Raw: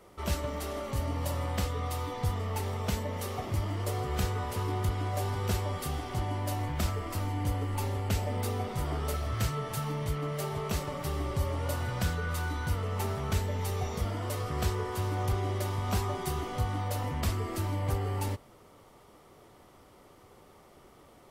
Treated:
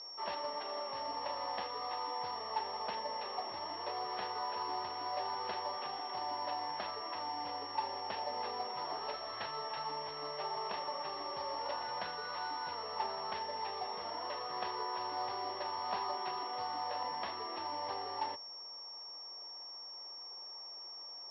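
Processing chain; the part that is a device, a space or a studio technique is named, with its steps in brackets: toy sound module (decimation joined by straight lines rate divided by 4×; class-D stage that switches slowly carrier 5.5 kHz; cabinet simulation 750–4500 Hz, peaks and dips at 910 Hz +6 dB, 1.4 kHz -9 dB, 2.3 kHz -7 dB, 4.4 kHz +7 dB); trim +1 dB

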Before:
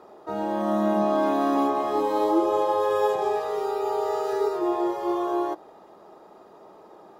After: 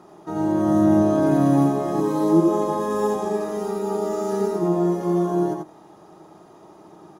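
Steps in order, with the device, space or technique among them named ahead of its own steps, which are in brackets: graphic EQ with 31 bands 315 Hz +8 dB, 500 Hz -9 dB, 6.3 kHz +10 dB, 10 kHz +11 dB; octave pedal (harmony voices -12 st -6 dB); delay 86 ms -5 dB; dynamic bell 3.1 kHz, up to -8 dB, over -47 dBFS, Q 1; 2.00–2.66 s: high-pass 160 Hz

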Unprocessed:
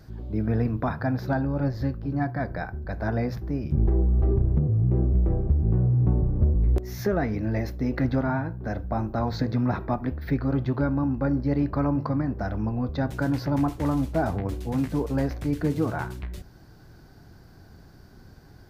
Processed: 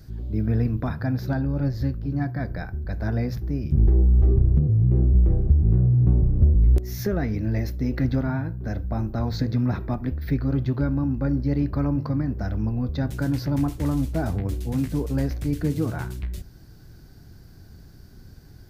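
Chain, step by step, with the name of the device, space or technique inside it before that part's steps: smiley-face EQ (bass shelf 130 Hz +6 dB; peaking EQ 890 Hz -6.5 dB 1.6 oct; treble shelf 5.4 kHz +6.5 dB)

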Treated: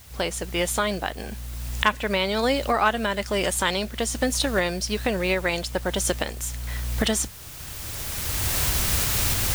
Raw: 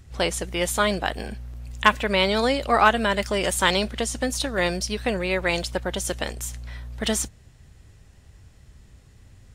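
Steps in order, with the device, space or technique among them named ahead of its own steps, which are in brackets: cheap recorder with automatic gain (white noise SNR 21 dB; recorder AGC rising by 15 dB/s); trim -4 dB

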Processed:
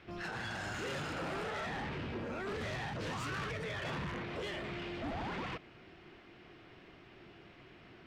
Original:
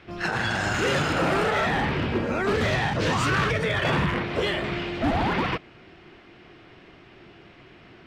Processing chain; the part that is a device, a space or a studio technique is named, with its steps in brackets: soft clipper into limiter (saturation -23 dBFS, distortion -14 dB; peak limiter -28.5 dBFS, peak gain reduction 5 dB); trim -7 dB

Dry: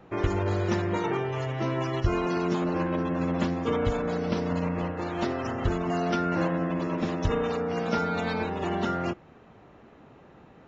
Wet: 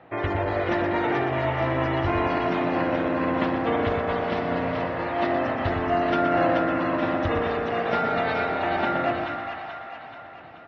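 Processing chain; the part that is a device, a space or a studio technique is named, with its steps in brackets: two-band feedback delay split 690 Hz, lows 106 ms, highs 431 ms, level -4 dB; frequency-shifting delay pedal into a guitar cabinet (frequency-shifting echo 121 ms, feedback 53%, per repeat -53 Hz, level -8.5 dB; cabinet simulation 90–3900 Hz, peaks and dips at 140 Hz -4 dB, 200 Hz -10 dB, 400 Hz -6 dB, 680 Hz +7 dB, 1.9 kHz +6 dB); trim +2 dB

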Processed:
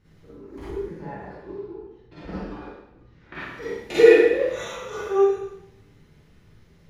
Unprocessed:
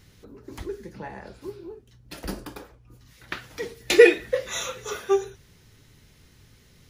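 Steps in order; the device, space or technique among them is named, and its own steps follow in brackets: spectral sustain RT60 0.56 s; through cloth (treble shelf 2.9 kHz -16.5 dB); 1.32–3.35 s: distance through air 150 m; Schroeder reverb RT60 0.79 s, DRR -9.5 dB; trim -8.5 dB

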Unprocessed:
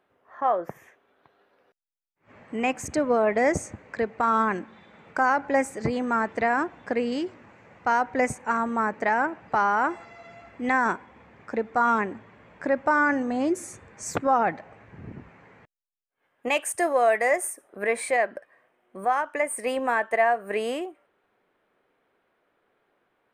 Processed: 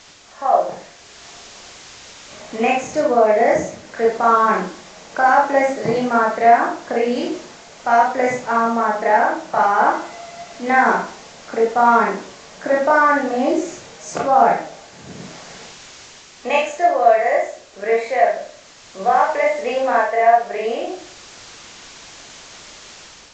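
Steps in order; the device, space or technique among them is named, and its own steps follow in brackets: filmed off a television (band-pass 170–7900 Hz; peaking EQ 640 Hz +7 dB 0.51 oct; reverberation RT60 0.45 s, pre-delay 24 ms, DRR -4.5 dB; white noise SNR 22 dB; level rider gain up to 6 dB; trim -1 dB; AAC 32 kbps 16 kHz)

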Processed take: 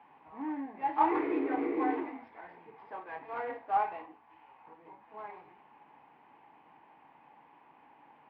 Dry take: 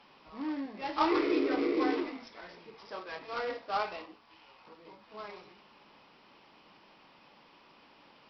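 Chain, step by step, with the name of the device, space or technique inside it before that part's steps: bass cabinet (cabinet simulation 83–2000 Hz, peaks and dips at 110 Hz -6 dB, 200 Hz -10 dB, 380 Hz -5 dB, 560 Hz -8 dB, 830 Hz +8 dB, 1.3 kHz -9 dB); trim +1 dB

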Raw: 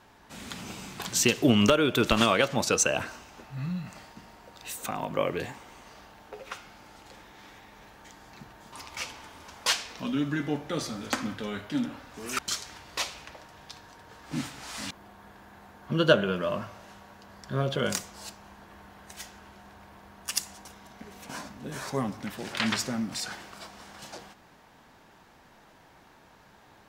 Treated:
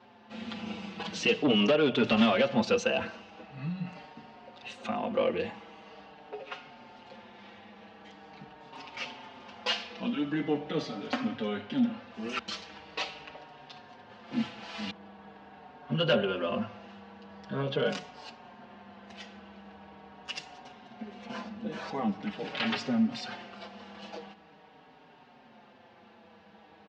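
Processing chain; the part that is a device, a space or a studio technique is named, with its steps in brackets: hum notches 60/120/180 Hz; barber-pole flanger into a guitar amplifier (endless flanger 5.2 ms -0.43 Hz; saturation -23 dBFS, distortion -11 dB; cabinet simulation 95–4600 Hz, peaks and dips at 220 Hz +10 dB, 480 Hz +8 dB, 750 Hz +6 dB, 2.8 kHz +6 dB)

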